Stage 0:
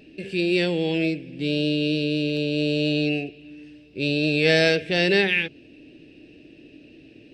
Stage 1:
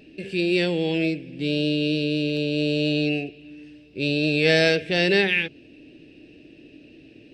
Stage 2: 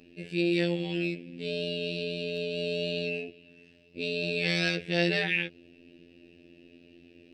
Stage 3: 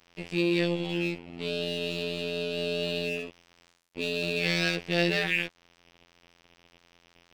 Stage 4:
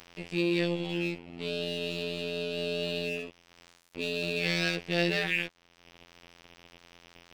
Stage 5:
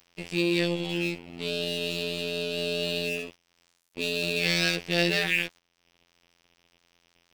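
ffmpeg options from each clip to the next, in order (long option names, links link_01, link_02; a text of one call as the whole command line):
ffmpeg -i in.wav -af anull out.wav
ffmpeg -i in.wav -af "afftfilt=real='hypot(re,im)*cos(PI*b)':imag='0':win_size=2048:overlap=0.75,volume=-3dB" out.wav
ffmpeg -i in.wav -filter_complex "[0:a]asplit=2[link_01][link_02];[link_02]acompressor=threshold=-36dB:ratio=6,volume=-2dB[link_03];[link_01][link_03]amix=inputs=2:normalize=0,aeval=exprs='sgn(val(0))*max(abs(val(0))-0.0075,0)':channel_layout=same" out.wav
ffmpeg -i in.wav -af "acompressor=mode=upward:threshold=-39dB:ratio=2.5,volume=-2dB" out.wav
ffmpeg -i in.wav -af "highshelf=frequency=5000:gain=10,agate=range=-15dB:threshold=-46dB:ratio=16:detection=peak,volume=2dB" out.wav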